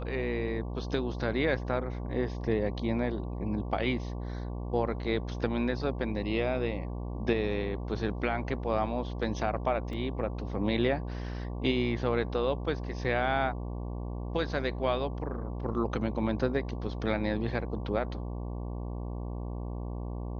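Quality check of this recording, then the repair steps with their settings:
buzz 60 Hz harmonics 19 -36 dBFS
9.93 s: dropout 2.2 ms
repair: de-hum 60 Hz, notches 19; interpolate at 9.93 s, 2.2 ms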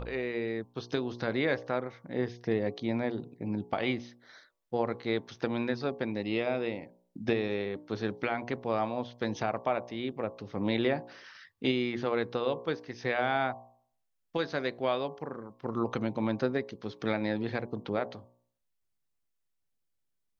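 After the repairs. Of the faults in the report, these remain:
nothing left

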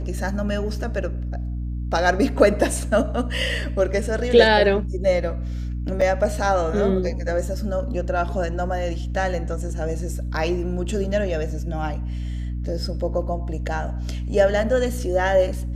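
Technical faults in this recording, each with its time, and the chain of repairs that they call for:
hum 60 Hz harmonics 5 -27 dBFS
6.01 s: dropout 4.4 ms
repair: de-hum 60 Hz, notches 5; interpolate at 6.01 s, 4.4 ms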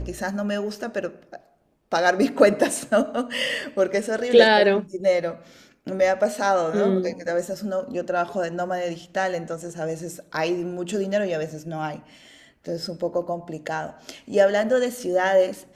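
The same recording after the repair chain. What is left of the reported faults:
nothing left

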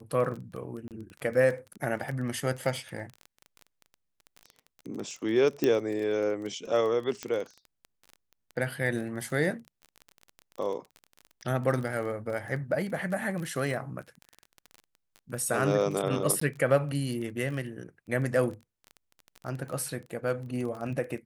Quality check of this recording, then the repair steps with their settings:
crackle 21 per s -34 dBFS
0.88–0.91 s: dropout 28 ms
5.64 s: pop -13 dBFS
7.23 s: pop -18 dBFS
16.40–16.41 s: dropout 14 ms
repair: de-click; interpolate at 0.88 s, 28 ms; interpolate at 16.40 s, 14 ms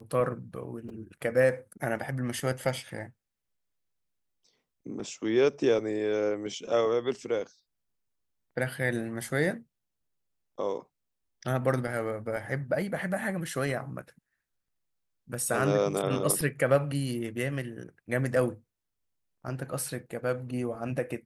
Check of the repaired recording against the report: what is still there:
nothing left

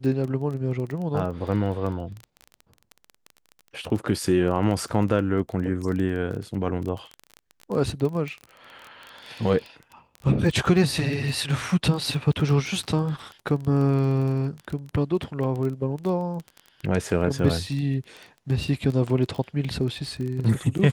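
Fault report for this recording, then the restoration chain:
crackle 20 per s -29 dBFS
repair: de-click

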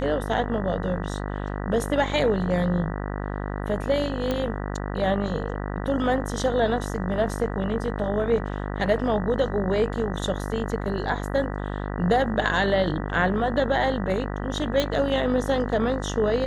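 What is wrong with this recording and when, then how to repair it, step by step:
buzz 50 Hz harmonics 39 -30 dBFS
4.31 s: pop -13 dBFS
14.80 s: pop -9 dBFS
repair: de-click; de-hum 50 Hz, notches 39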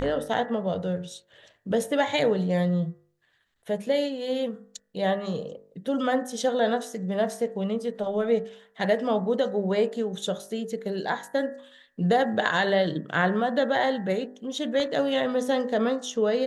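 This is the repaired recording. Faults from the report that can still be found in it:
14.80 s: pop

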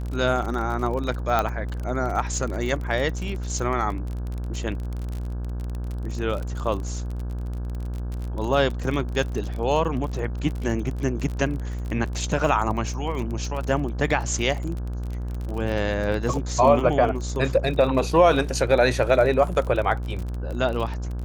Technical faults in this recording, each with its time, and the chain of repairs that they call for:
buzz 60 Hz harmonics 28 -29 dBFS
crackle 36 per s -29 dBFS
1.39 s: pop -9 dBFS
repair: de-click; de-hum 60 Hz, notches 28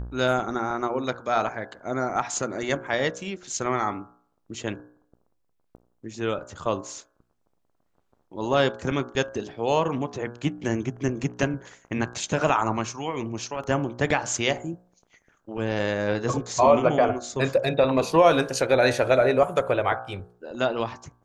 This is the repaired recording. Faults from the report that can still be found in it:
nothing left

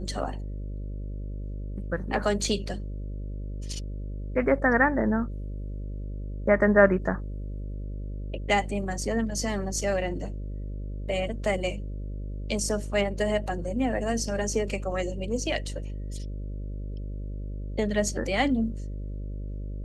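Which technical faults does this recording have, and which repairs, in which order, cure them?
buzz 50 Hz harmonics 12 -34 dBFS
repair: de-hum 50 Hz, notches 12

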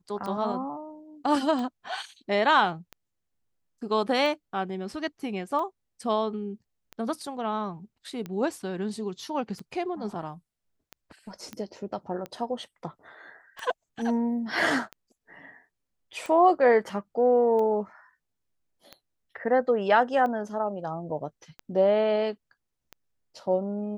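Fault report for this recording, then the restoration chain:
tick 45 rpm -23 dBFS
11.53 s: pop -23 dBFS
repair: de-click

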